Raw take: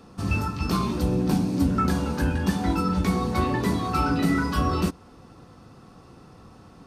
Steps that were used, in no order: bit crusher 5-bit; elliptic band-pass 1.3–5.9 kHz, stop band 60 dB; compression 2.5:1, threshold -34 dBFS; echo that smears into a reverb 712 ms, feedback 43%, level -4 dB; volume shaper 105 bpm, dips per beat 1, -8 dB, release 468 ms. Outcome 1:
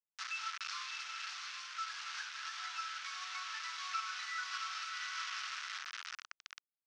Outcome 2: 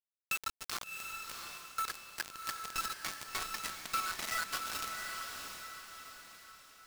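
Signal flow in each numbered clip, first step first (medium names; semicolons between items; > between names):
volume shaper > echo that smears into a reverb > bit crusher > compression > elliptic band-pass; elliptic band-pass > bit crusher > volume shaper > compression > echo that smears into a reverb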